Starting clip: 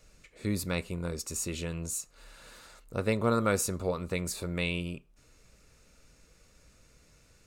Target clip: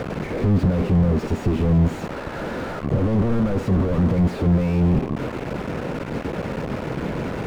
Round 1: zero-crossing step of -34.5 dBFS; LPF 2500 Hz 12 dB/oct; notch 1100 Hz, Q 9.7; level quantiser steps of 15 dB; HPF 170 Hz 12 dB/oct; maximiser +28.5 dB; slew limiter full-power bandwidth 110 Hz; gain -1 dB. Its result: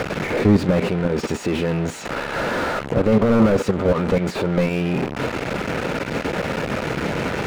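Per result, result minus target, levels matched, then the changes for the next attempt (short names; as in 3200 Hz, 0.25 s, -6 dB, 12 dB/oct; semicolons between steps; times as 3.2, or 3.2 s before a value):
slew limiter: distortion -8 dB; zero-crossing step: distortion -7 dB
change: slew limiter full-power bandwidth 37.5 Hz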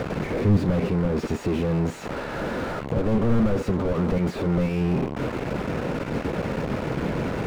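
zero-crossing step: distortion -7 dB
change: zero-crossing step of -24 dBFS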